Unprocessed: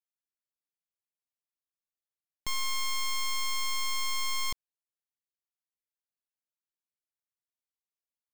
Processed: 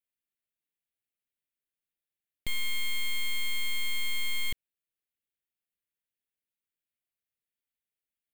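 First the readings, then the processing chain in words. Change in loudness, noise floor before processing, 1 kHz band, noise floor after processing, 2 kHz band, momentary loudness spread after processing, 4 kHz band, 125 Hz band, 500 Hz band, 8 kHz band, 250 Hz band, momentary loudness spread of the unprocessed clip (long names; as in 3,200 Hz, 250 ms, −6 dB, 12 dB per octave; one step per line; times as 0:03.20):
−0.5 dB, below −85 dBFS, −16.5 dB, below −85 dBFS, +3.0 dB, 5 LU, −0.5 dB, +3.5 dB, 0.0 dB, −5.5 dB, +3.0 dB, 5 LU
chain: phaser with its sweep stopped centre 2,400 Hz, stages 4
highs frequency-modulated by the lows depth 0.12 ms
level +3.5 dB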